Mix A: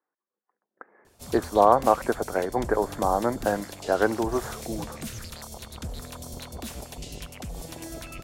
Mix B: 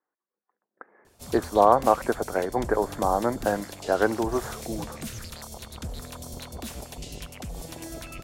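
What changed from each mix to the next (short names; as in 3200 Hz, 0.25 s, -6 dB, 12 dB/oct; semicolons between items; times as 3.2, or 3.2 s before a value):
none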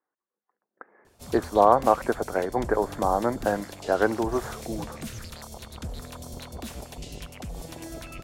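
background: add high shelf 4600 Hz -4 dB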